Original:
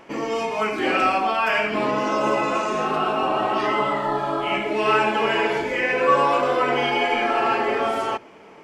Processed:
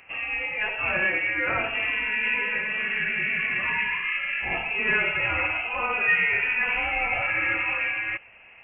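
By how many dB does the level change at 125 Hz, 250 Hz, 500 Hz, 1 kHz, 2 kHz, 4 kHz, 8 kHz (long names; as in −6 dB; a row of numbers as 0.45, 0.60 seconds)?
−5.5 dB, −14.0 dB, −14.5 dB, −13.0 dB, +3.5 dB, −5.5 dB, below −35 dB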